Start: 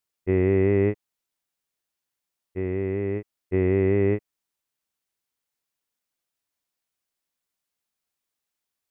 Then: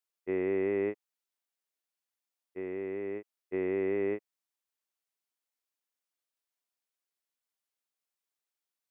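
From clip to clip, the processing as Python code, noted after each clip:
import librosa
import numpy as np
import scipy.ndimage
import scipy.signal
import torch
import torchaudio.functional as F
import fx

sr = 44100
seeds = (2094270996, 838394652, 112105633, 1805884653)

y = scipy.signal.sosfilt(scipy.signal.butter(2, 310.0, 'highpass', fs=sr, output='sos'), x)
y = y * 10.0 ** (-6.5 / 20.0)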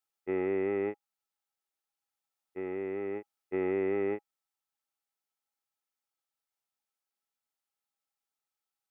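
y = fx.rider(x, sr, range_db=10, speed_s=2.0)
y = fx.small_body(y, sr, hz=(820.0, 1300.0), ring_ms=90, db=15)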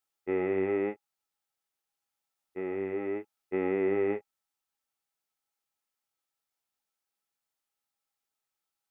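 y = fx.chorus_voices(x, sr, voices=2, hz=0.82, base_ms=19, depth_ms=4.6, mix_pct=25)
y = y * 10.0 ** (4.5 / 20.0)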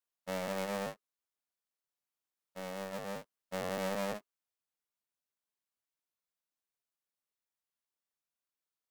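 y = fx.cycle_switch(x, sr, every=2, mode='inverted')
y = y * 10.0 ** (-8.0 / 20.0)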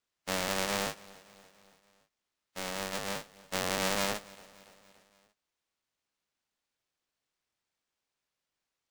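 y = fx.spec_flatten(x, sr, power=0.58)
y = fx.sample_hold(y, sr, seeds[0], rate_hz=13000.0, jitter_pct=20)
y = fx.echo_feedback(y, sr, ms=286, feedback_pct=58, wet_db=-22)
y = y * 10.0 ** (4.5 / 20.0)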